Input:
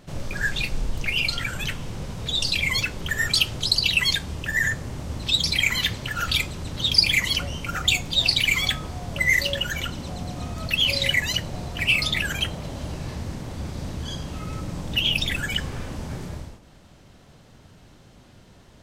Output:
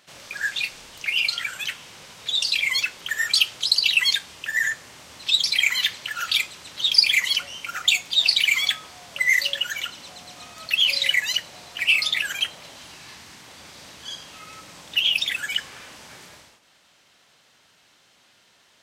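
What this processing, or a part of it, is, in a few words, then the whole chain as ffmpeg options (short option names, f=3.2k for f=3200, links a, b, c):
filter by subtraction: -filter_complex "[0:a]asplit=2[a][b];[b]lowpass=2.5k,volume=-1[c];[a][c]amix=inputs=2:normalize=0,asettb=1/sr,asplit=3[d][e][f];[d]atrim=end=12.764[g];[e]atrim=start=12.76:end=13.48,asetpts=PTS-STARTPTS,afade=t=in:d=0.004:c=qsin,afade=t=out:st=0.716:d=0.004:c=qsin,equalizer=f=550:w=2.9:g=-7[h];[f]atrim=start=13.476[i];[g][h]acrossfade=d=0.004:c1=hsin:c2=qsin[j];[j][i]acrossfade=d=0.004:c1=qsin:c2=hsin"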